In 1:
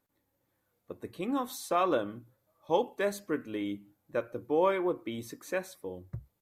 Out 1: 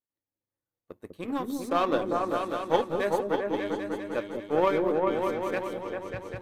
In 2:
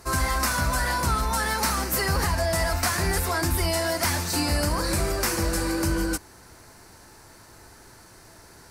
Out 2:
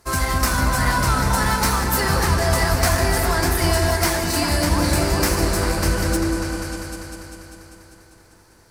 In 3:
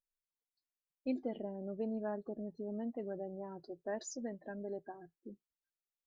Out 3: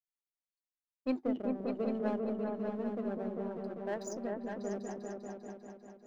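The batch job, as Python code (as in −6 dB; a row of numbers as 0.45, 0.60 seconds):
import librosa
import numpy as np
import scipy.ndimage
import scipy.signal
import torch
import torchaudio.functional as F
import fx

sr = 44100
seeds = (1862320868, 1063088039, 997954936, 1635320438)

y = fx.power_curve(x, sr, exponent=1.4)
y = fx.echo_opening(y, sr, ms=198, hz=400, octaves=2, feedback_pct=70, wet_db=0)
y = F.gain(torch.from_numpy(y), 5.0).numpy()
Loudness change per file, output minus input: +4.0, +5.0, +4.5 LU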